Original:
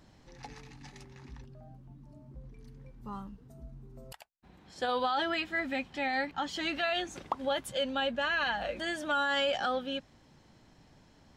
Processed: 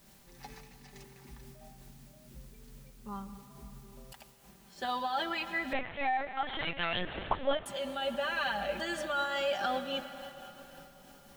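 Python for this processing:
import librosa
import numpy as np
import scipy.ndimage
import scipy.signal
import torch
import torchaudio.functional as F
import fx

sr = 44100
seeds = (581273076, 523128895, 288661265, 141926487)

y = x + 0.72 * np.pad(x, (int(5.1 * sr / 1000.0), 0))[:len(x)]
y = fx.rider(y, sr, range_db=10, speed_s=0.5)
y = fx.quant_dither(y, sr, seeds[0], bits=10, dither='triangular')
y = fx.rev_plate(y, sr, seeds[1], rt60_s=4.7, hf_ratio=0.75, predelay_ms=105, drr_db=10.0)
y = fx.lpc_vocoder(y, sr, seeds[2], excitation='pitch_kept', order=10, at=(5.73, 7.66))
y = fx.am_noise(y, sr, seeds[3], hz=5.7, depth_pct=55)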